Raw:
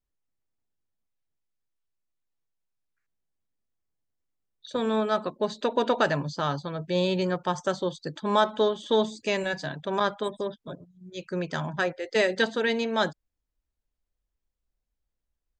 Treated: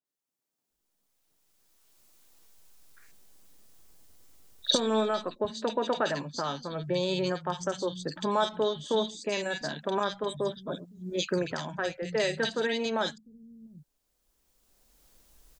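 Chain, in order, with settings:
camcorder AGC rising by 15 dB per second
high-shelf EQ 4,200 Hz +7 dB
three-band delay without the direct sound mids, highs, lows 50/700 ms, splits 150/2,000 Hz
level −4.5 dB

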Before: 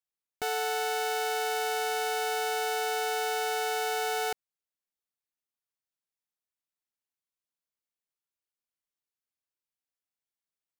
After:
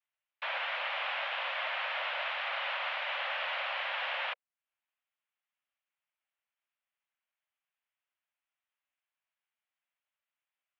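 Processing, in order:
cochlear-implant simulation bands 1
single-sideband voice off tune +370 Hz 160–2,700 Hz
one half of a high-frequency compander encoder only

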